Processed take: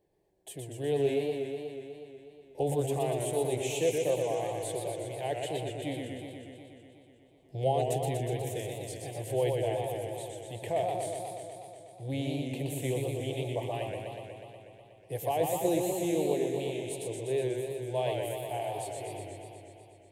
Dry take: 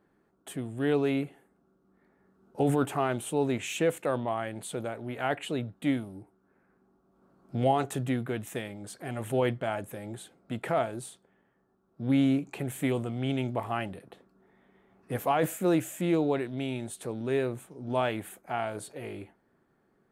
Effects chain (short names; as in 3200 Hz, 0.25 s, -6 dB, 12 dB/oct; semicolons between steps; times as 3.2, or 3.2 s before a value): bell 1200 Hz -7 dB 1.1 oct; fixed phaser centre 560 Hz, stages 4; warbling echo 0.122 s, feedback 76%, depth 141 cents, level -4 dB